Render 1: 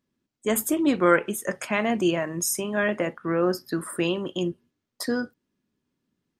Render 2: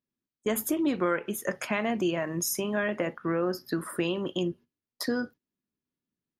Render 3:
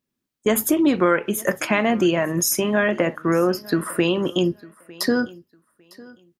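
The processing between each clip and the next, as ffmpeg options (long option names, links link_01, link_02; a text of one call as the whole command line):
ffmpeg -i in.wav -af "agate=range=-13dB:threshold=-44dB:ratio=16:detection=peak,equalizer=frequency=8200:width=4.3:gain=-12,acompressor=threshold=-25dB:ratio=3" out.wav
ffmpeg -i in.wav -af "aecho=1:1:903|1806:0.075|0.0157,volume=9dB" out.wav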